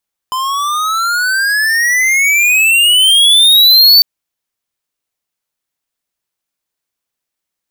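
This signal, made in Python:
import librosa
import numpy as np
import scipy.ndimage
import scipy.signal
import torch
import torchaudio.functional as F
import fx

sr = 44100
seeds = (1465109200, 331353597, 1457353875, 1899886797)

y = fx.riser_tone(sr, length_s=3.7, level_db=-4.5, wave='square', hz=1020.0, rise_st=26.0, swell_db=12.0)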